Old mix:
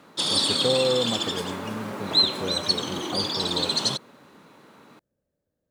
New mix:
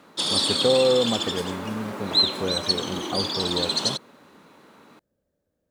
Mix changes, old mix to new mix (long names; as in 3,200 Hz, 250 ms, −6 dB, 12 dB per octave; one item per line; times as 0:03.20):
speech +4.0 dB
master: add parametric band 130 Hz −5 dB 0.43 octaves